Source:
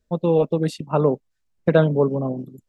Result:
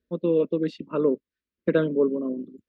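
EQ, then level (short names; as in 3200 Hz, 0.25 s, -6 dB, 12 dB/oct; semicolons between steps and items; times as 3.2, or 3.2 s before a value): HPF 80 Hz; air absorption 240 m; fixed phaser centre 320 Hz, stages 4; 0.0 dB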